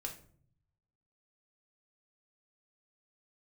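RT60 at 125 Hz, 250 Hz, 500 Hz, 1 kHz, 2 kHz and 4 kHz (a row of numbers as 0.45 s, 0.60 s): 1.3 s, 0.90 s, 0.60 s, 0.45 s, 0.40 s, 0.30 s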